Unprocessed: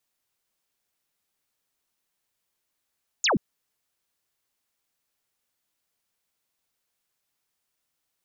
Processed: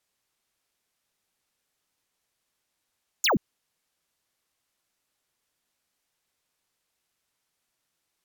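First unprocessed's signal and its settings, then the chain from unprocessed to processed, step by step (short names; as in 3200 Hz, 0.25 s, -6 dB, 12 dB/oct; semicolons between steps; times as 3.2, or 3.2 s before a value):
laser zap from 7500 Hz, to 150 Hz, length 0.13 s sine, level -19 dB
careless resampling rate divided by 2×, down none, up hold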